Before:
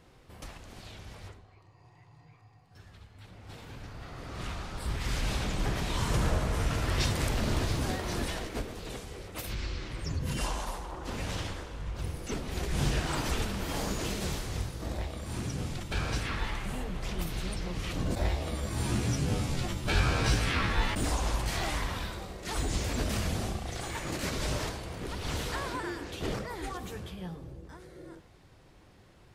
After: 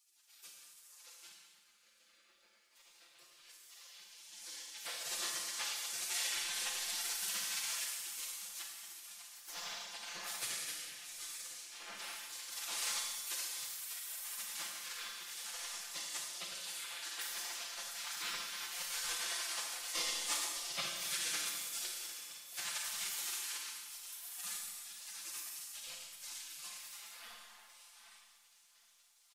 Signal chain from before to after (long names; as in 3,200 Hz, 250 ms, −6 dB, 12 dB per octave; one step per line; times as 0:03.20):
gate on every frequency bin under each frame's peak −30 dB weak
comb filter 5.8 ms, depth 84%
repeating echo 759 ms, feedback 46%, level −17.5 dB
four-comb reverb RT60 1.4 s, combs from 29 ms, DRR 0.5 dB
level +2 dB